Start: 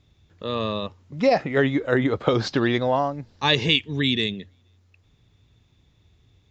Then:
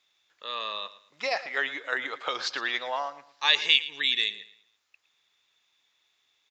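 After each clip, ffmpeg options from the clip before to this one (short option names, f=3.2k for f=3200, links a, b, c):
-af "highpass=1.2k,aecho=1:1:112|224|336:0.158|0.0475|0.0143"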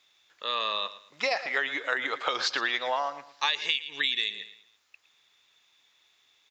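-af "acompressor=threshold=-29dB:ratio=10,volume=5.5dB"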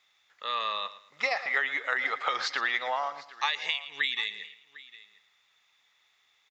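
-af "equalizer=f=315:t=o:w=0.33:g=-7,equalizer=f=800:t=o:w=0.33:g=5,equalizer=f=1.25k:t=o:w=0.33:g=6,equalizer=f=2k:t=o:w=0.33:g=8,aecho=1:1:752:0.1,volume=-4.5dB"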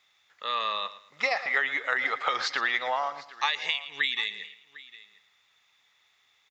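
-af "lowshelf=f=230:g=4.5,volume=1.5dB"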